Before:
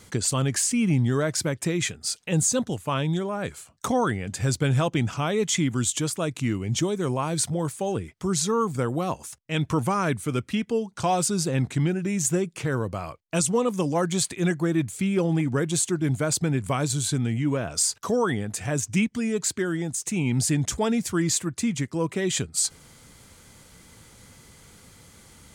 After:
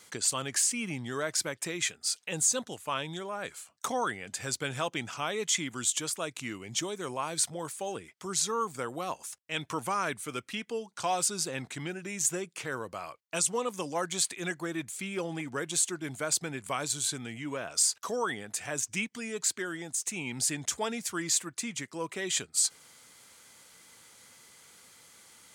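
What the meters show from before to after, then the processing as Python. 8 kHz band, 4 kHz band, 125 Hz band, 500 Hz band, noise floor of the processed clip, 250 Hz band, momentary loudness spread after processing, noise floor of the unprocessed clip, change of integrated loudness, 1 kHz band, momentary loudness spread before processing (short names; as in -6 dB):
-2.0 dB, -2.0 dB, -18.0 dB, -9.0 dB, -64 dBFS, -13.5 dB, 10 LU, -54 dBFS, -6.0 dB, -5.0 dB, 5 LU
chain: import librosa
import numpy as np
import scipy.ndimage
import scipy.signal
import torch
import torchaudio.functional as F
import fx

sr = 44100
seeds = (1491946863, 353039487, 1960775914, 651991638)

y = fx.highpass(x, sr, hz=910.0, slope=6)
y = y * librosa.db_to_amplitude(-2.0)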